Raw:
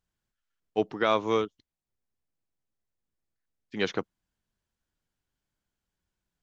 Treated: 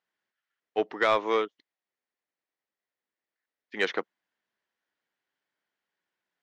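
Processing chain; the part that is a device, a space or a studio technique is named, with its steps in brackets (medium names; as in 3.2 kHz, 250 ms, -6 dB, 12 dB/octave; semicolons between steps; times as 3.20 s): intercom (band-pass 400–4000 Hz; peaking EQ 1.9 kHz +7 dB 0.33 oct; saturation -16 dBFS, distortion -18 dB); trim +3 dB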